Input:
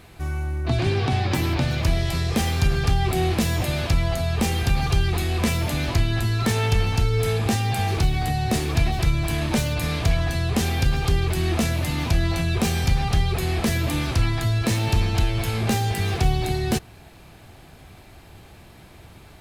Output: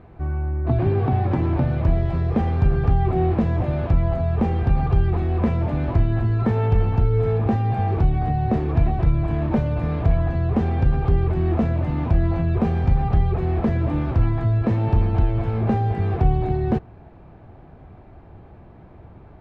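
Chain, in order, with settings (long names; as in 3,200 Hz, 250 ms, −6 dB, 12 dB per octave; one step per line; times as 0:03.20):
low-pass filter 1,000 Hz 12 dB per octave
level +2.5 dB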